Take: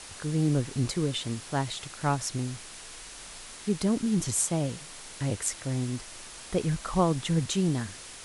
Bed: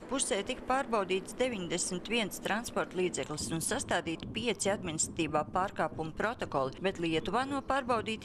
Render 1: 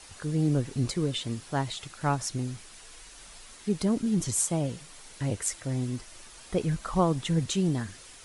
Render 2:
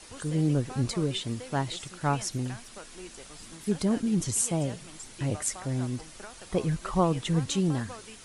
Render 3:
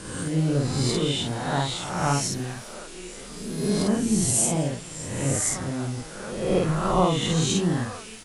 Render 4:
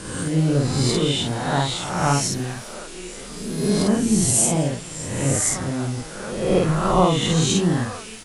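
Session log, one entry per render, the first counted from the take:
noise reduction 7 dB, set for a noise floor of -45 dBFS
add bed -13.5 dB
reverse spectral sustain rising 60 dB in 1.12 s; doubling 50 ms -2 dB
trim +4 dB

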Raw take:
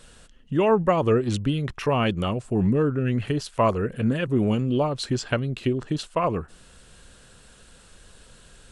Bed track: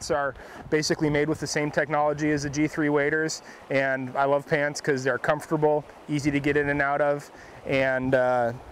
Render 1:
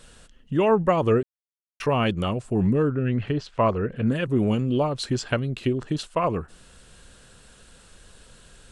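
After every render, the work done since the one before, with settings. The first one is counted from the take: 1.23–1.80 s: mute; 2.91–4.07 s: distance through air 140 m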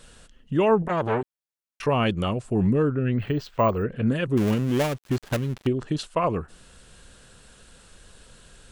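0.82–1.85 s: transformer saturation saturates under 1.1 kHz; 3.18–3.83 s: careless resampling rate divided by 2×, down none, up hold; 4.37–5.67 s: dead-time distortion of 0.28 ms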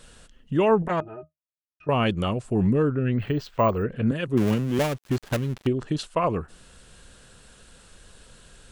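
1.00–1.89 s: pitch-class resonator D#, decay 0.13 s; 4.11–4.79 s: three bands expanded up and down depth 70%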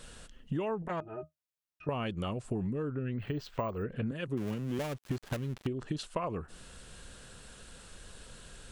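compression 10:1, threshold -31 dBFS, peak gain reduction 16 dB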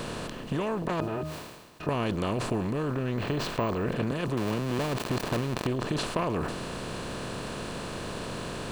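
spectral levelling over time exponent 0.4; decay stretcher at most 45 dB/s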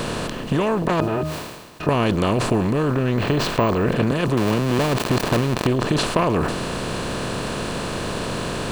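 trim +9.5 dB; peak limiter -2 dBFS, peak gain reduction 2.5 dB

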